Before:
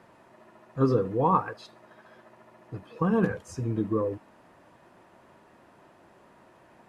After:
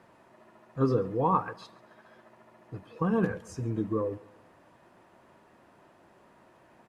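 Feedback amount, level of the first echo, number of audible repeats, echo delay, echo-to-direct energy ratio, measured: 45%, -22.5 dB, 2, 138 ms, -21.5 dB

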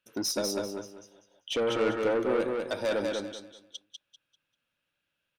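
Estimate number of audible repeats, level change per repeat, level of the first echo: 3, -11.5 dB, -3.5 dB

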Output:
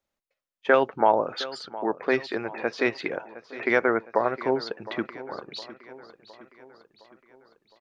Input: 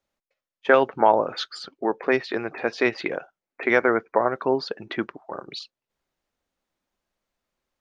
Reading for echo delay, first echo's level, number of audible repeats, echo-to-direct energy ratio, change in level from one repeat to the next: 712 ms, -16.5 dB, 4, -15.0 dB, -5.5 dB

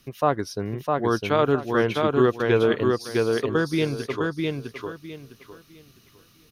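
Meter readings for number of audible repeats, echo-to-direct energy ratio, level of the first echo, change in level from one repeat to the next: 3, -2.5 dB, -3.0 dB, -12.0 dB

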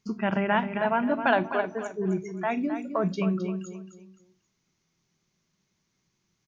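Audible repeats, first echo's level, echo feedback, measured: 3, -9.5 dB, 31%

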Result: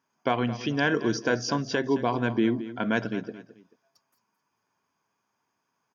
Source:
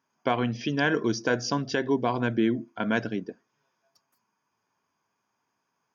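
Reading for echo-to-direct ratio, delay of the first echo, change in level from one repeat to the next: -14.0 dB, 218 ms, -10.0 dB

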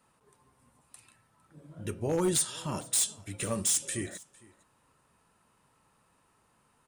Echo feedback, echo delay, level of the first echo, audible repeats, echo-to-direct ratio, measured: no regular repeats, 456 ms, -23.5 dB, 1, -23.5 dB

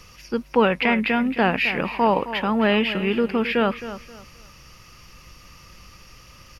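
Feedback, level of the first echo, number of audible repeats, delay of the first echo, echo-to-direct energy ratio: 27%, -13.0 dB, 2, 265 ms, -12.5 dB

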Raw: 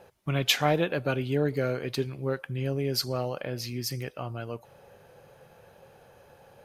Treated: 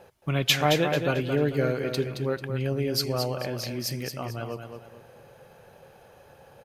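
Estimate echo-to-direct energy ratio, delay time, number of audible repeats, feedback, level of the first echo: -6.5 dB, 221 ms, 3, 33%, -7.0 dB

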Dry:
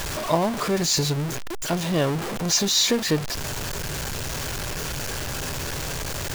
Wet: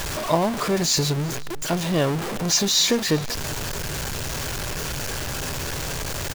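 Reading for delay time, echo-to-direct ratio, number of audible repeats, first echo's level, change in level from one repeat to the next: 381 ms, -21.5 dB, 2, -22.0 dB, -11.5 dB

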